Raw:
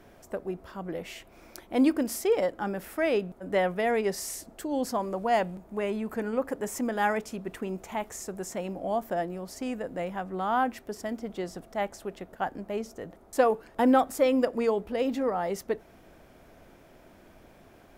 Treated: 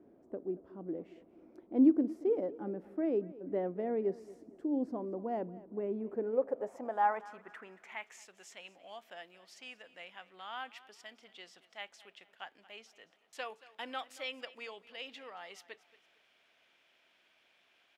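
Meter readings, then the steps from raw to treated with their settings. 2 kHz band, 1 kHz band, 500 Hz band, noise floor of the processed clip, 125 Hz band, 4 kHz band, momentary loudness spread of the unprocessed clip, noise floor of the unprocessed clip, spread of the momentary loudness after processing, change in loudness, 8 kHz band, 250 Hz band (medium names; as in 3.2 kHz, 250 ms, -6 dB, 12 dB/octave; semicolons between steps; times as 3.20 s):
-10.5 dB, -10.0 dB, -9.5 dB, -71 dBFS, -11.5 dB, -5.5 dB, 12 LU, -55 dBFS, 20 LU, -6.5 dB, -20.0 dB, -5.5 dB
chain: feedback delay 228 ms, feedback 34%, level -19 dB; band-pass sweep 310 Hz -> 3 kHz, 5.94–8.32 s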